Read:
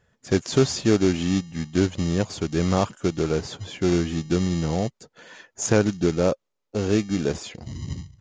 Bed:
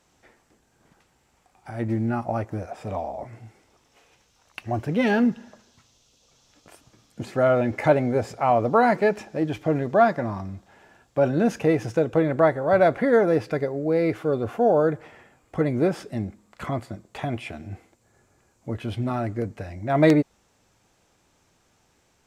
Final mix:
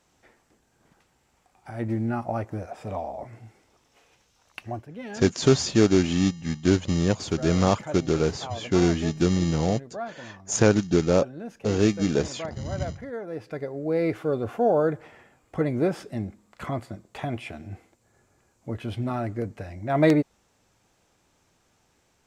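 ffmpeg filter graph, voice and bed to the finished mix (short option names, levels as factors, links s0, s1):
-filter_complex "[0:a]adelay=4900,volume=1.06[s0];[1:a]volume=4.22,afade=t=out:st=4.61:d=0.25:silence=0.188365,afade=t=in:st=13.26:d=0.77:silence=0.188365[s1];[s0][s1]amix=inputs=2:normalize=0"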